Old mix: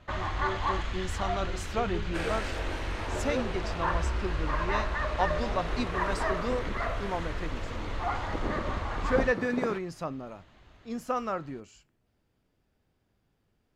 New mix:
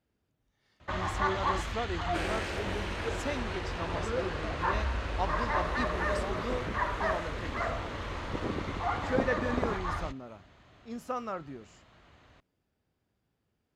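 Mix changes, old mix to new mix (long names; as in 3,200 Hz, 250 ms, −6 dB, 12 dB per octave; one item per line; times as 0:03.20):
speech −4.5 dB
first sound: entry +0.80 s
master: add high-pass filter 54 Hz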